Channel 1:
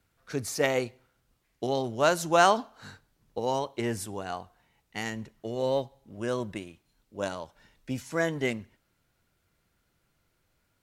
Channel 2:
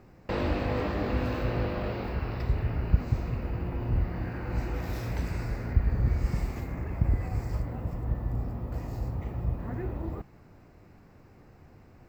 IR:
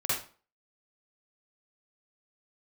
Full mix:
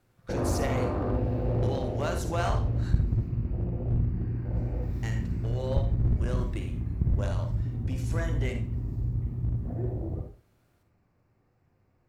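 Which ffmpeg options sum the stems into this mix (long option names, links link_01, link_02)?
-filter_complex "[0:a]acompressor=threshold=-34dB:ratio=2,volume=-3.5dB,asplit=3[link_01][link_02][link_03];[link_01]atrim=end=3.28,asetpts=PTS-STARTPTS,afade=type=out:start_time=3.276:duration=0.004:curve=hsin[link_04];[link_02]atrim=start=3.28:end=5.03,asetpts=PTS-STARTPTS,volume=0[link_05];[link_03]atrim=start=5.03,asetpts=PTS-STARTPTS,afade=type=in:duration=0.004:curve=hsin[link_06];[link_04][link_05][link_06]concat=n=3:v=0:a=1,asplit=2[link_07][link_08];[link_08]volume=-11dB[link_09];[1:a]afwtdn=0.0316,volume=-3.5dB,asplit=2[link_10][link_11];[link_11]volume=-6dB[link_12];[2:a]atrim=start_sample=2205[link_13];[link_09][link_12]amix=inputs=2:normalize=0[link_14];[link_14][link_13]afir=irnorm=-1:irlink=0[link_15];[link_07][link_10][link_15]amix=inputs=3:normalize=0,aeval=exprs='clip(val(0),-1,0.0708)':channel_layout=same"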